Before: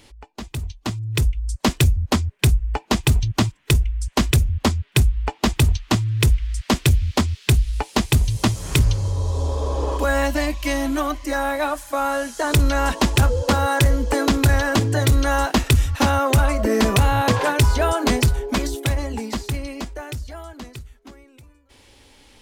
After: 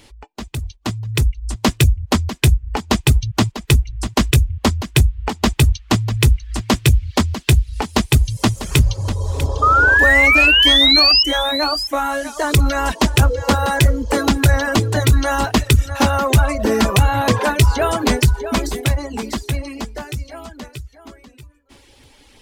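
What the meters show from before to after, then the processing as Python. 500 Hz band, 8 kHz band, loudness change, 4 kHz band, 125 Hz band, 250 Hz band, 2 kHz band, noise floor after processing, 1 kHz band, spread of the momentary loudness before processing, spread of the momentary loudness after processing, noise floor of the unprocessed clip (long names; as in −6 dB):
+2.0 dB, +3.0 dB, +4.5 dB, +10.5 dB, +2.5 dB, +2.5 dB, +9.0 dB, −50 dBFS, +3.5 dB, 10 LU, 15 LU, −54 dBFS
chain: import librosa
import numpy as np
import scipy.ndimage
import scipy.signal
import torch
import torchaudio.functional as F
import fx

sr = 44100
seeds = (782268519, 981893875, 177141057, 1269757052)

y = fx.spec_paint(x, sr, seeds[0], shape='rise', start_s=9.62, length_s=1.61, low_hz=1200.0, high_hz=5300.0, level_db=-15.0)
y = y + 10.0 ** (-11.0 / 20.0) * np.pad(y, (int(646 * sr / 1000.0), 0))[:len(y)]
y = fx.dereverb_blind(y, sr, rt60_s=0.62)
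y = y * 10.0 ** (3.0 / 20.0)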